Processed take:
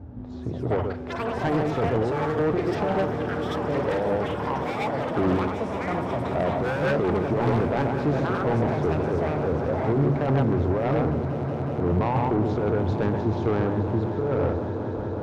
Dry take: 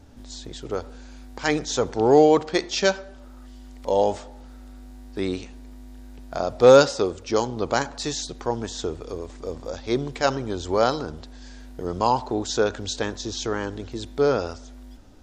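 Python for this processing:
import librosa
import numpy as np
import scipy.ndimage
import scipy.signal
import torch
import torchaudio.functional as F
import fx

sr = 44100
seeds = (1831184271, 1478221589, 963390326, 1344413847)

p1 = scipy.signal.sosfilt(scipy.signal.butter(2, 1000.0, 'lowpass', fs=sr, output='sos'), x)
p2 = 10.0 ** (-11.5 / 20.0) * (np.abs((p1 / 10.0 ** (-11.5 / 20.0) + 3.0) % 4.0 - 2.0) - 1.0)
p3 = scipy.signal.sosfilt(scipy.signal.butter(2, 54.0, 'highpass', fs=sr, output='sos'), p2)
p4 = p3 + fx.echo_single(p3, sr, ms=132, db=-9.0, dry=0)
p5 = fx.over_compress(p4, sr, threshold_db=-25.0, ratio=-1.0)
p6 = fx.echo_pitch(p5, sr, ms=229, semitones=7, count=3, db_per_echo=-6.0)
p7 = fx.echo_swell(p6, sr, ms=184, loudest=5, wet_db=-15.5)
p8 = 10.0 ** (-22.0 / 20.0) * np.tanh(p7 / 10.0 ** (-22.0 / 20.0))
p9 = fx.peak_eq(p8, sr, hz=110.0, db=10.0, octaves=1.5)
p10 = fx.hum_notches(p9, sr, base_hz=50, count=2)
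p11 = fx.doppler_dist(p10, sr, depth_ms=0.21)
y = F.gain(torch.from_numpy(p11), 3.0).numpy()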